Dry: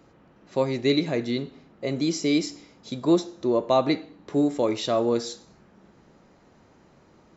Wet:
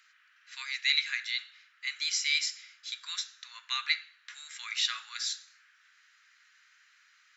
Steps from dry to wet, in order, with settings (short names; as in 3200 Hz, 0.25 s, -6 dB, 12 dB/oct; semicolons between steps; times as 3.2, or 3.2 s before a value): steep high-pass 1500 Hz 48 dB/oct; tilt -2 dB/oct; gain +8 dB